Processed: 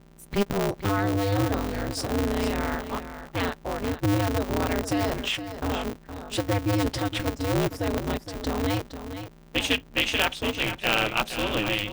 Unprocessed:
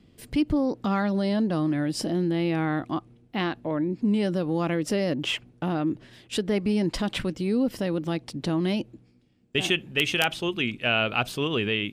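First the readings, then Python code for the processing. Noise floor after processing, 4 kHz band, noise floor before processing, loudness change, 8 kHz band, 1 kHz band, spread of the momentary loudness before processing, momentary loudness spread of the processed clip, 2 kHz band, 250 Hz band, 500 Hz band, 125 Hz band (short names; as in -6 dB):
-50 dBFS, +1.0 dB, -58 dBFS, -0.5 dB, +3.5 dB, +3.0 dB, 6 LU, 8 LU, +0.5 dB, -3.0 dB, 0.0 dB, +1.5 dB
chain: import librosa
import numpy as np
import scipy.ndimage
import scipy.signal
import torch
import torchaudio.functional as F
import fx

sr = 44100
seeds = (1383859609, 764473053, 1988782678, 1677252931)

p1 = fx.noise_reduce_blind(x, sr, reduce_db=20)
p2 = fx.add_hum(p1, sr, base_hz=60, snr_db=25)
p3 = p2 + fx.echo_single(p2, sr, ms=465, db=-10.5, dry=0)
y = p3 * np.sign(np.sin(2.0 * np.pi * 100.0 * np.arange(len(p3)) / sr))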